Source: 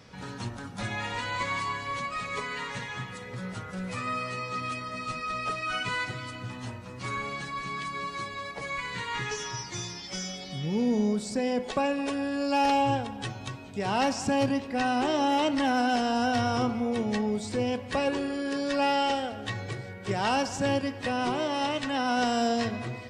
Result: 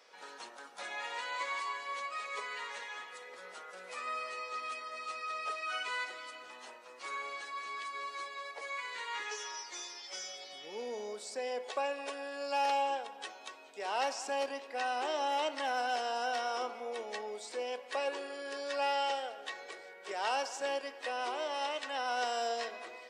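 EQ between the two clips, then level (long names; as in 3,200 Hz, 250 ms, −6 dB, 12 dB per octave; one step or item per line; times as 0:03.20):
high-pass filter 440 Hz 24 dB per octave
−6.0 dB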